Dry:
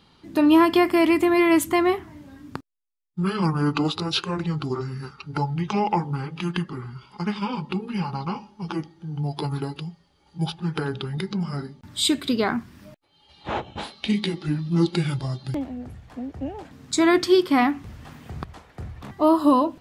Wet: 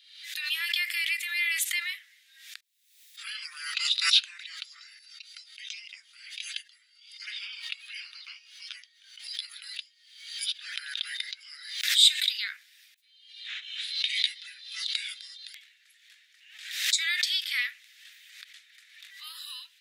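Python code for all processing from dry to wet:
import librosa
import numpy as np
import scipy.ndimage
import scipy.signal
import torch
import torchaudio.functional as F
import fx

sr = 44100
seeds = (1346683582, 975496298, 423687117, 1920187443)

y = fx.chain(x, sr, fx.bandpass_q(hz=7600.0, q=0.55),
    fx.band_widen(depth_pct=40), at=(4.99, 7.22))
y = scipy.signal.sosfilt(scipy.signal.butter(8, 1800.0, 'highpass', fs=sr, output='sos'), y)
y = fx.peak_eq(y, sr, hz=3700.0, db=7.0, octaves=0.25)
y = fx.pre_swell(y, sr, db_per_s=71.0)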